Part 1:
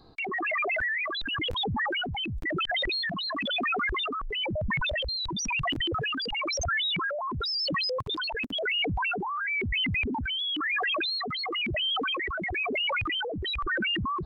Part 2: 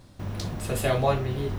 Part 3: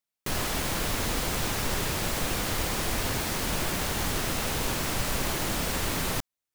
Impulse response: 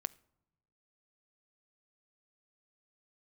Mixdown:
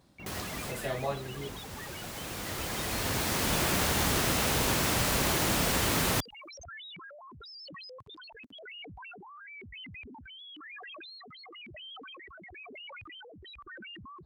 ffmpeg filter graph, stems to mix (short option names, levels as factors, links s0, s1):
-filter_complex "[0:a]volume=0.126[s0];[1:a]equalizer=f=98:t=o:w=0.38:g=-13.5,volume=0.335,asplit=2[s1][s2];[2:a]volume=1.26[s3];[s2]apad=whole_len=288763[s4];[s3][s4]sidechaincompress=threshold=0.00282:ratio=5:attack=9.5:release=1480[s5];[s0][s1][s5]amix=inputs=3:normalize=0,highpass=54"